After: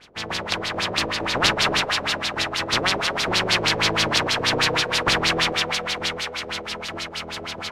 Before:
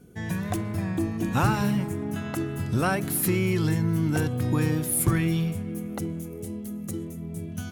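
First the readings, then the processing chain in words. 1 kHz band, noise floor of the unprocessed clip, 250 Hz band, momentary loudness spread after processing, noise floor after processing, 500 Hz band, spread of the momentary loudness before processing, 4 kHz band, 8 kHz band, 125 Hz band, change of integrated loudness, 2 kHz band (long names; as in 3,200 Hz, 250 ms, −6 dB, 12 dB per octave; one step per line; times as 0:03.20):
+8.5 dB, −37 dBFS, −6.0 dB, 11 LU, −36 dBFS, +4.5 dB, 12 LU, +22.0 dB, +3.0 dB, −8.5 dB, +5.0 dB, +12.5 dB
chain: compressing power law on the bin magnitudes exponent 0.16
feedback echo with a high-pass in the loop 221 ms, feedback 73%, high-pass 500 Hz, level −3.5 dB
auto-filter low-pass sine 6.3 Hz 450–4,600 Hz
level +3.5 dB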